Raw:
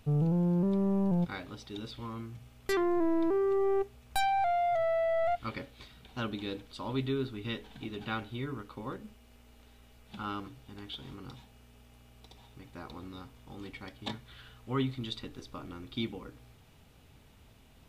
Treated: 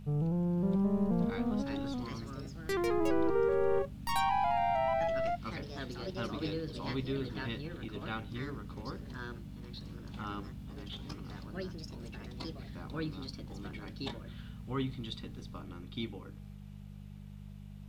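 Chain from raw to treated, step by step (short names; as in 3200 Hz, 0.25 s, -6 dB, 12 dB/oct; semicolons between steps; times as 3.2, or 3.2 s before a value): buzz 50 Hz, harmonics 4, -44 dBFS -1 dB/oct; echoes that change speed 0.575 s, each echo +3 st, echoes 2; gain -4 dB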